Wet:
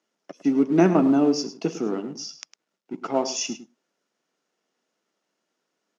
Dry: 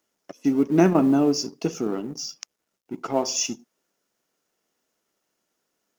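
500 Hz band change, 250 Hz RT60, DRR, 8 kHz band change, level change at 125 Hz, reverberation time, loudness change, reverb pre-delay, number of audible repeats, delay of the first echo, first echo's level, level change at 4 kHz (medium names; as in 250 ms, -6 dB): +0.5 dB, no reverb, no reverb, no reading, -1.5 dB, no reverb, +0.5 dB, no reverb, 1, 105 ms, -13.5 dB, -2.0 dB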